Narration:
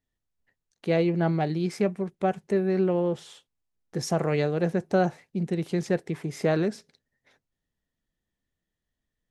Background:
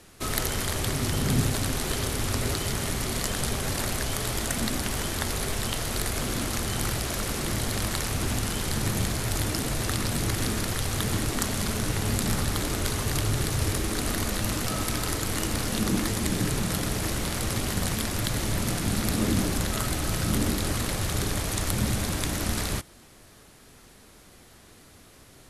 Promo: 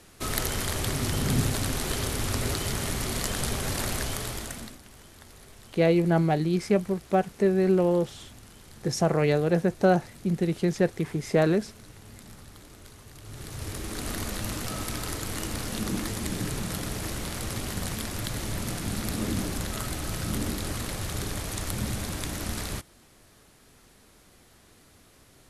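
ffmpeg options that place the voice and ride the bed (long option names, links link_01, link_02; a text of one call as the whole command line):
ffmpeg -i stem1.wav -i stem2.wav -filter_complex "[0:a]adelay=4900,volume=2dB[link_01];[1:a]volume=15.5dB,afade=type=out:start_time=3.99:duration=0.79:silence=0.1,afade=type=in:start_time=13.2:duration=0.94:silence=0.149624[link_02];[link_01][link_02]amix=inputs=2:normalize=0" out.wav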